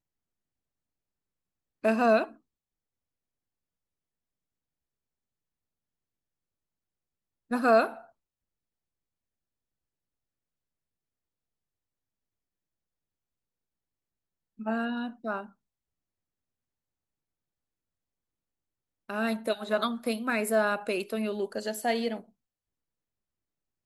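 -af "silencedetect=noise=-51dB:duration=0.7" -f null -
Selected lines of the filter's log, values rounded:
silence_start: 0.00
silence_end: 1.83 | silence_duration: 1.83
silence_start: 2.35
silence_end: 7.51 | silence_duration: 5.16
silence_start: 8.10
silence_end: 14.59 | silence_duration: 6.50
silence_start: 15.50
silence_end: 19.09 | silence_duration: 3.59
silence_start: 22.28
silence_end: 23.86 | silence_duration: 1.57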